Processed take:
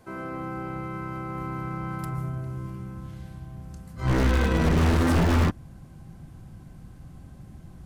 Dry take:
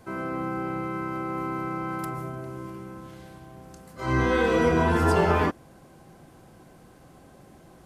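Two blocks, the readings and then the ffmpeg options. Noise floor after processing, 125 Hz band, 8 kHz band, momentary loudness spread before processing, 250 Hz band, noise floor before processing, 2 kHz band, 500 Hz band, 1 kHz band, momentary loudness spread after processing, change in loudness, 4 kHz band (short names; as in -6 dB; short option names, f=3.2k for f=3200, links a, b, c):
-47 dBFS, +5.0 dB, +2.5 dB, 19 LU, +0.5 dB, -52 dBFS, -3.0 dB, -5.5 dB, -4.5 dB, 24 LU, -0.5 dB, +2.0 dB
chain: -af "asubboost=boost=9:cutoff=150,aeval=exprs='0.237*(abs(mod(val(0)/0.237+3,4)-2)-1)':c=same,aeval=exprs='0.237*(cos(1*acos(clip(val(0)/0.237,-1,1)))-cos(1*PI/2))+0.0335*(cos(4*acos(clip(val(0)/0.237,-1,1)))-cos(4*PI/2))+0.0133*(cos(6*acos(clip(val(0)/0.237,-1,1)))-cos(6*PI/2))':c=same,volume=-3dB"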